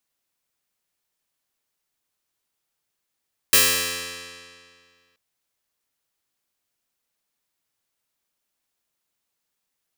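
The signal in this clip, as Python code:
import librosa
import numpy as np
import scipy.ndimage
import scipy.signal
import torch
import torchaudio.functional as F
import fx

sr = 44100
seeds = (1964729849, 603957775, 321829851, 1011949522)

y = fx.pluck(sr, length_s=1.63, note=41, decay_s=2.1, pick=0.12, brightness='bright')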